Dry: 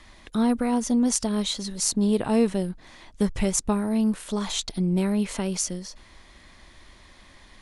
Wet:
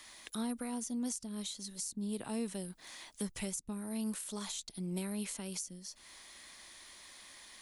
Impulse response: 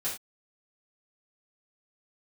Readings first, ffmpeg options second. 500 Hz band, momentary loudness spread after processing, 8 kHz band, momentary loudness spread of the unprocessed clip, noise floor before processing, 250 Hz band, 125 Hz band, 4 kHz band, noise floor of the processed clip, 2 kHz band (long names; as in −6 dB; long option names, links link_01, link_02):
−17.5 dB, 14 LU, −11.5 dB, 8 LU, −52 dBFS, −15.5 dB, −15.5 dB, −12.5 dB, −62 dBFS, −11.0 dB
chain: -filter_complex "[0:a]aemphasis=mode=production:type=riaa,acrossover=split=260[link_01][link_02];[link_02]acompressor=threshold=-36dB:ratio=6[link_03];[link_01][link_03]amix=inputs=2:normalize=0,volume=-5.5dB"